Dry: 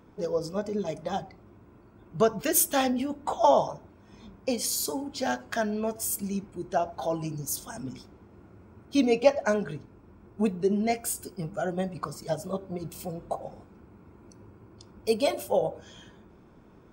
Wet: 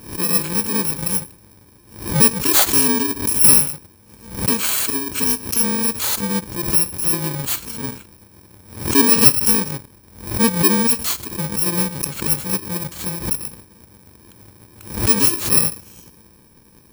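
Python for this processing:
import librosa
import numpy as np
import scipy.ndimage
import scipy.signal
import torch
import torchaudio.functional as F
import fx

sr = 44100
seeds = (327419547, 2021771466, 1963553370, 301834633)

y = fx.bit_reversed(x, sr, seeds[0], block=64)
y = fx.leveller(y, sr, passes=1)
y = fx.pre_swell(y, sr, db_per_s=110.0)
y = y * librosa.db_to_amplitude(6.0)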